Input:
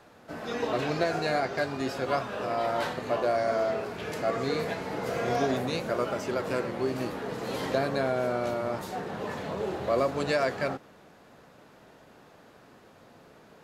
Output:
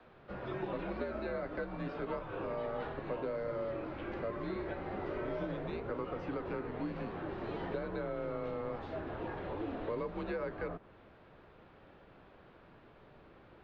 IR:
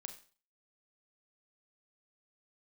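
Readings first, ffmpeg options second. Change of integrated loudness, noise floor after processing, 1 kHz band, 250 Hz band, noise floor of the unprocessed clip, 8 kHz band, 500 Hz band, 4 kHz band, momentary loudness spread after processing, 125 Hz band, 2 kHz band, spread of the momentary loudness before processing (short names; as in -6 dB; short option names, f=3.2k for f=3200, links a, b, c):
-9.5 dB, -59 dBFS, -12.0 dB, -7.0 dB, -55 dBFS, under -30 dB, -9.5 dB, -17.5 dB, 21 LU, -7.0 dB, -11.5 dB, 7 LU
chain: -filter_complex "[0:a]lowpass=f=3.5k:w=0.5412,lowpass=f=3.5k:w=1.3066,acrossover=split=330|1700[a][b][c];[a]acompressor=threshold=-42dB:ratio=4[d];[b]acompressor=threshold=-33dB:ratio=4[e];[c]acompressor=threshold=-53dB:ratio=4[f];[d][e][f]amix=inputs=3:normalize=0,afreqshift=-99,volume=-4dB"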